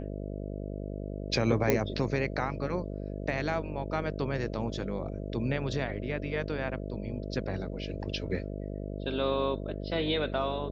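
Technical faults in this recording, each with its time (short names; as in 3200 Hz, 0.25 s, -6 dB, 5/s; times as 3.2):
buzz 50 Hz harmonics 13 -37 dBFS
1.7 pop -11 dBFS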